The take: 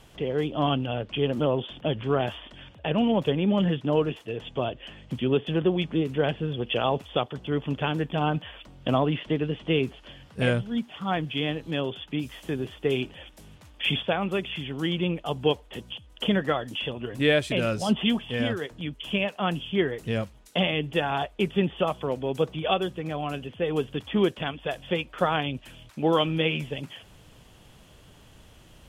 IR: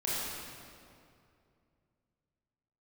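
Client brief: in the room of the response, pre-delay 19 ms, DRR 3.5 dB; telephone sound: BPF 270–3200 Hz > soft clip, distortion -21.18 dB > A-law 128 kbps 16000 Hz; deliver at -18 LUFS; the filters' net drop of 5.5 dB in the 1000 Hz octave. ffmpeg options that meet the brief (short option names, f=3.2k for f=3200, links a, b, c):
-filter_complex "[0:a]equalizer=f=1k:t=o:g=-8,asplit=2[a][b];[1:a]atrim=start_sample=2205,adelay=19[c];[b][c]afir=irnorm=-1:irlink=0,volume=-10.5dB[d];[a][d]amix=inputs=2:normalize=0,highpass=270,lowpass=3.2k,asoftclip=threshold=-16.5dB,volume=12dB" -ar 16000 -c:a pcm_alaw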